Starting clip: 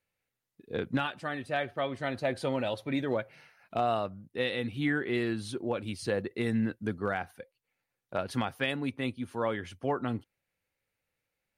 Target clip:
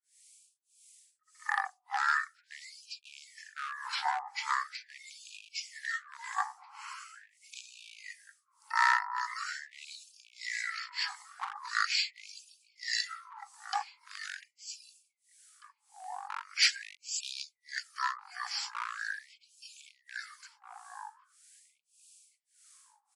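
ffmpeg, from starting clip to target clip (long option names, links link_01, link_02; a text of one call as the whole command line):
ffmpeg -i in.wav -filter_complex "[0:a]aemphasis=mode=production:type=riaa,acontrast=79,highpass=frequency=270:poles=1,equalizer=frequency=890:width=1.5:gain=9,alimiter=limit=-11dB:level=0:latency=1:release=417,acrossover=split=1500[link_01][link_02];[link_01]aeval=exprs='val(0)*(1-1/2+1/2*cos(2*PI*3.3*n/s))':channel_layout=same[link_03];[link_02]aeval=exprs='val(0)*(1-1/2-1/2*cos(2*PI*3.3*n/s))':channel_layout=same[link_04];[link_03][link_04]amix=inputs=2:normalize=0,volume=22dB,asoftclip=hard,volume=-22dB,asplit=2[link_05][link_06];[link_06]adelay=944,lowpass=frequency=840:poles=1,volume=-6dB,asplit=2[link_07][link_08];[link_08]adelay=944,lowpass=frequency=840:poles=1,volume=0.16,asplit=2[link_09][link_10];[link_10]adelay=944,lowpass=frequency=840:poles=1,volume=0.16[link_11];[link_07][link_09][link_11]amix=inputs=3:normalize=0[link_12];[link_05][link_12]amix=inputs=2:normalize=0,asetrate=22050,aresample=44100,afftfilt=real='re*gte(b*sr/1024,710*pow(2400/710,0.5+0.5*sin(2*PI*0.42*pts/sr)))':imag='im*gte(b*sr/1024,710*pow(2400/710,0.5+0.5*sin(2*PI*0.42*pts/sr)))':win_size=1024:overlap=0.75,volume=5dB" out.wav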